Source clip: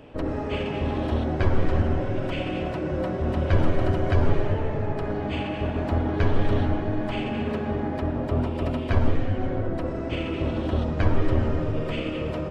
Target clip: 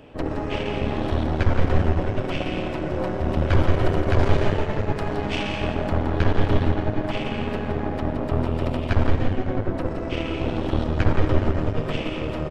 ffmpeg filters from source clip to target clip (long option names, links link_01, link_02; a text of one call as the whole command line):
ffmpeg -i in.wav -af "asetnsamples=nb_out_samples=441:pad=0,asendcmd='4.19 highshelf g 10;5.74 highshelf g 2',highshelf=frequency=2300:gain=2.5,aeval=exprs='0.398*(cos(1*acos(clip(val(0)/0.398,-1,1)))-cos(1*PI/2))+0.0631*(cos(6*acos(clip(val(0)/0.398,-1,1)))-cos(6*PI/2))':channel_layout=same,aecho=1:1:169:0.398" out.wav